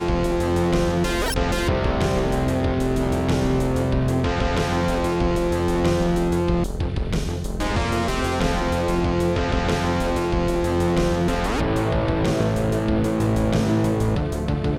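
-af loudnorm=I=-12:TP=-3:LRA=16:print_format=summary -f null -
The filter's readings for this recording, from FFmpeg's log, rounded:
Input Integrated:    -22.0 LUFS
Input True Peak:      -9.1 dBTP
Input LRA:             1.1 LU
Input Threshold:     -32.0 LUFS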